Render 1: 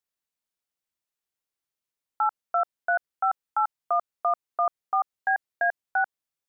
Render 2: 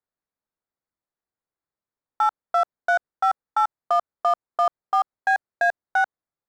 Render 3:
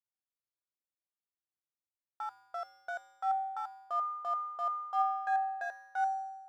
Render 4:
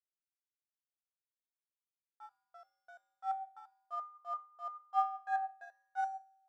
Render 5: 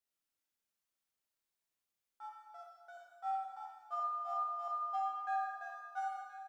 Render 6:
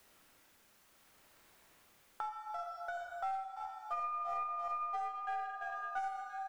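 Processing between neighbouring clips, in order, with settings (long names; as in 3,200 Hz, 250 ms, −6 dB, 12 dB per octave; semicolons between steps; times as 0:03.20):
adaptive Wiener filter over 15 samples; level +4.5 dB
tuned comb filter 110 Hz, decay 1.1 s, harmonics odd, mix 90%
flanger 0.99 Hz, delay 6.1 ms, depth 2.2 ms, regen +83%; expander for the loud parts 2.5 to 1, over −46 dBFS; level +5 dB
downward compressor, threshold −37 dBFS, peak gain reduction 11.5 dB; single-tap delay 1,025 ms −13.5 dB; four-comb reverb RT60 1.3 s, combs from 28 ms, DRR −1.5 dB; level +2 dB
stylus tracing distortion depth 0.053 ms; amplitude tremolo 0.66 Hz, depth 34%; multiband upward and downward compressor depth 100%; level +1 dB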